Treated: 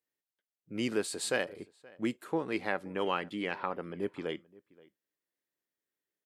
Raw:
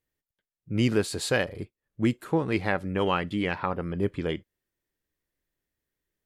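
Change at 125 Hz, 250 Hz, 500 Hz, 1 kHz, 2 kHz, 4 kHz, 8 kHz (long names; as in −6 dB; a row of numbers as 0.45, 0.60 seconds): −16.5, −8.5, −6.0, −5.5, −5.5, −5.5, −2.0 decibels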